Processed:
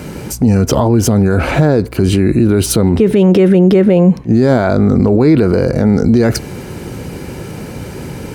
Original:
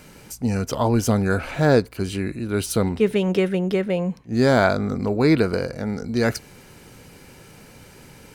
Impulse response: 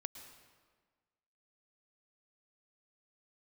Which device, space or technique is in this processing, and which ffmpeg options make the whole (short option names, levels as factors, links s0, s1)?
mastering chain: -af "highpass=f=40:w=0.5412,highpass=f=40:w=1.3066,equalizer=f=350:t=o:w=0.22:g=4,acompressor=threshold=0.112:ratio=2.5,tiltshelf=f=870:g=5,alimiter=level_in=7.94:limit=0.891:release=50:level=0:latency=1,volume=0.891"